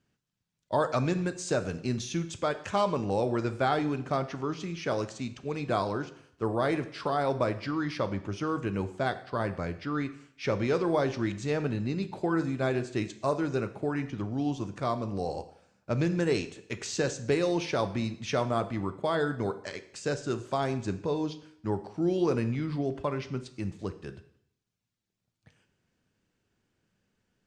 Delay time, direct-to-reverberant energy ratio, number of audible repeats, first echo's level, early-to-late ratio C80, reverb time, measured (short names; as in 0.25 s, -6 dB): none, 10.0 dB, none, none, 16.5 dB, 0.70 s